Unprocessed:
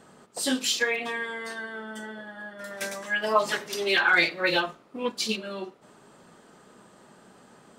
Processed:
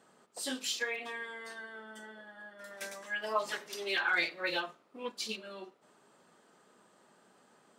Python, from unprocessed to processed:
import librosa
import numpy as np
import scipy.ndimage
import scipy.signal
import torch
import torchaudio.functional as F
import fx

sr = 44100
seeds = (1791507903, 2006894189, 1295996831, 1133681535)

y = fx.highpass(x, sr, hz=310.0, slope=6)
y = F.gain(torch.from_numpy(y), -9.0).numpy()